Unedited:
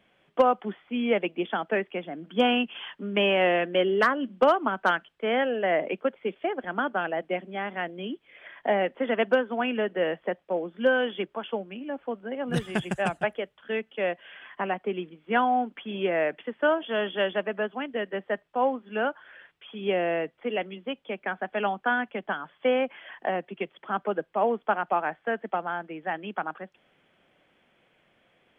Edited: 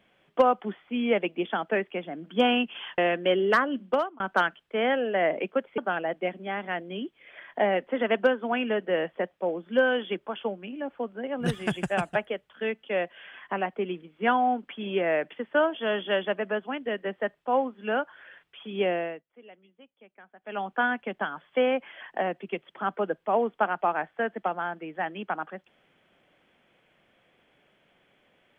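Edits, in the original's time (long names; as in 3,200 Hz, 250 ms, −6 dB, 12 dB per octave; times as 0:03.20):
0:02.98–0:03.47: remove
0:04.28–0:04.69: fade out
0:06.27–0:06.86: remove
0:19.97–0:21.83: duck −21 dB, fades 0.34 s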